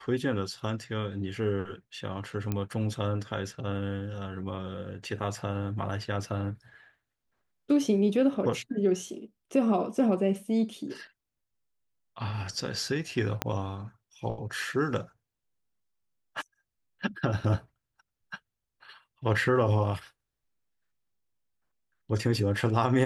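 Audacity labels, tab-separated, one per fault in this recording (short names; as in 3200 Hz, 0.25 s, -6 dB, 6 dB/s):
2.520000	2.520000	pop -17 dBFS
13.420000	13.420000	pop -11 dBFS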